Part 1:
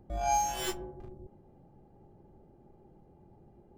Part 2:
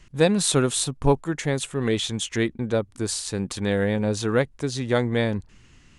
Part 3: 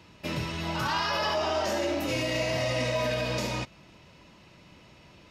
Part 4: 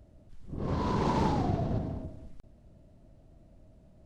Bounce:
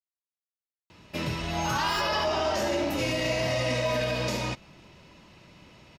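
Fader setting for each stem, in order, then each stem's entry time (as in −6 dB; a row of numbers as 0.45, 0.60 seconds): −5.5 dB, muted, +1.0 dB, −14.5 dB; 1.30 s, muted, 0.90 s, 1.65 s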